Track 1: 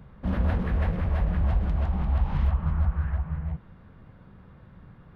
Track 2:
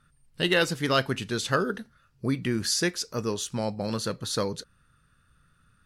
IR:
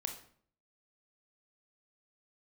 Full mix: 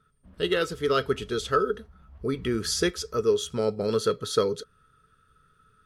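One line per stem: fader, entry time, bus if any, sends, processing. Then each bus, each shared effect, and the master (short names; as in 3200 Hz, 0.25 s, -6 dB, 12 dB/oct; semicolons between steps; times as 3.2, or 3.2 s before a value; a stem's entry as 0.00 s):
-13.0 dB, 0.00 s, no send, upward expander 1.5:1, over -40 dBFS; auto duck -8 dB, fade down 0.35 s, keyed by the second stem
-4.0 dB, 0.00 s, no send, small resonant body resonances 430/1300/3300 Hz, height 18 dB, ringing for 70 ms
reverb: off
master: vocal rider 0.5 s; bell 810 Hz -7 dB 0.21 oct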